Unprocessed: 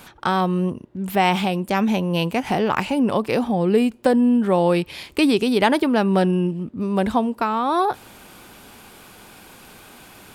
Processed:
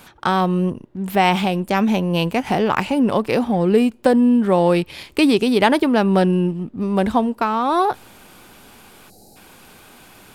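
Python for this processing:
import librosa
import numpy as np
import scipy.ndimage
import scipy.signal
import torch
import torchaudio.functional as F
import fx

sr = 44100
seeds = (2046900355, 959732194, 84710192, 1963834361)

p1 = fx.spec_box(x, sr, start_s=9.1, length_s=0.26, low_hz=880.0, high_hz=3800.0, gain_db=-26)
p2 = fx.backlash(p1, sr, play_db=-25.5)
p3 = p1 + F.gain(torch.from_numpy(p2), -6.5).numpy()
y = F.gain(torch.from_numpy(p3), -1.0).numpy()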